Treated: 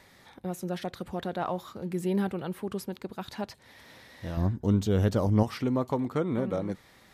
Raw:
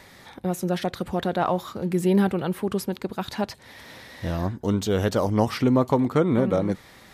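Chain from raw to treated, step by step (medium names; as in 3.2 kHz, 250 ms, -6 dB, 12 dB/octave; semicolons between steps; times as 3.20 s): 4.37–5.43 s: bass shelf 270 Hz +11.5 dB; trim -8 dB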